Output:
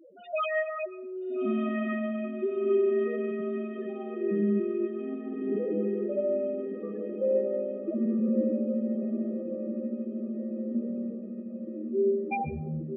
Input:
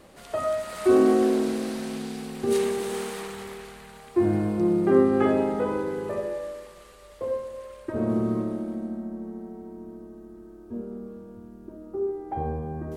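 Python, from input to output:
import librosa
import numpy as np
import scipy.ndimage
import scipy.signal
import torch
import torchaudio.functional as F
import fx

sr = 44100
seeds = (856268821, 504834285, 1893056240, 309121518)

y = fx.halfwave_hold(x, sr)
y = fx.weighting(y, sr, curve='D')
y = fx.over_compress(y, sr, threshold_db=-21.0, ratio=-0.5)
y = fx.spec_topn(y, sr, count=2)
y = fx.echo_diffused(y, sr, ms=1323, feedback_pct=55, wet_db=-5.0)
y = fx.rev_plate(y, sr, seeds[0], rt60_s=0.56, hf_ratio=0.7, predelay_ms=110, drr_db=14.5)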